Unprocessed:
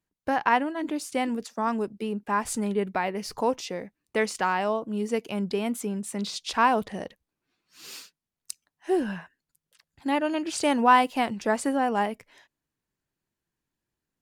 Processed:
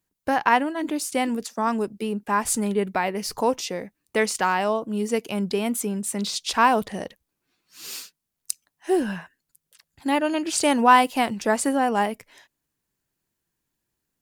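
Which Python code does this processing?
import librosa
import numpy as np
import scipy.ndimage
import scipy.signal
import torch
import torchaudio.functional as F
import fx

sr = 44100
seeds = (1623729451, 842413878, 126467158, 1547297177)

y = fx.high_shelf(x, sr, hz=6800.0, db=9.0)
y = y * 10.0 ** (3.0 / 20.0)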